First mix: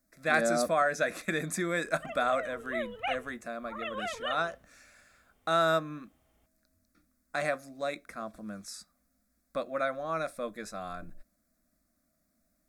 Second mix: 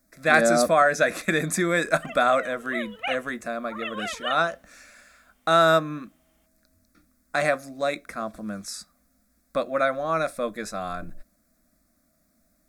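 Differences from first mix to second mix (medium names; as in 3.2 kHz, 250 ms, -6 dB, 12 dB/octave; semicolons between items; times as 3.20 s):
speech +8.0 dB; background: add tilt shelf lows -7 dB, about 650 Hz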